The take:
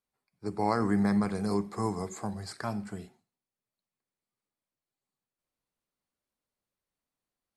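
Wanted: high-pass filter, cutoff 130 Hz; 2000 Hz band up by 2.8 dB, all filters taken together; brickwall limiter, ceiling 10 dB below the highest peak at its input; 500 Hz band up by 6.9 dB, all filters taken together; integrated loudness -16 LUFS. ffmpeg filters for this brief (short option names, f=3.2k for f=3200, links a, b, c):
-af "highpass=130,equalizer=f=500:t=o:g=8.5,equalizer=f=2k:t=o:g=3,volume=15.5dB,alimiter=limit=-4dB:level=0:latency=1"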